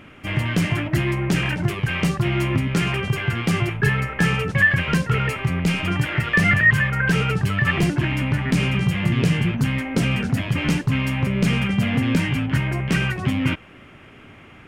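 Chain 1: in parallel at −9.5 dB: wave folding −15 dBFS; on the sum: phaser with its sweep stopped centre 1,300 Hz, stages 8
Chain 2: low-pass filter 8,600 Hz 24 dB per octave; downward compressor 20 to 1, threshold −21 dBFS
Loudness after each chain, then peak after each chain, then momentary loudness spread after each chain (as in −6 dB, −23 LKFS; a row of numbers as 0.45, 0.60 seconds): −23.5, −26.0 LKFS; −9.0, −11.0 dBFS; 3, 2 LU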